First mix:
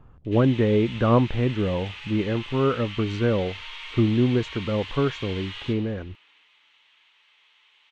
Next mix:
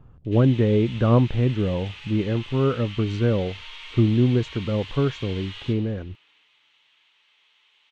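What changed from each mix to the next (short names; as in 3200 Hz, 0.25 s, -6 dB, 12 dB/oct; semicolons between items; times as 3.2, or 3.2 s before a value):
master: add ten-band EQ 125 Hz +4 dB, 1000 Hz -3 dB, 2000 Hz -3 dB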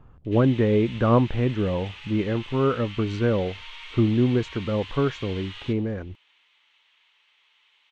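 background: send -10.5 dB; master: add ten-band EQ 125 Hz -4 dB, 1000 Hz +3 dB, 2000 Hz +3 dB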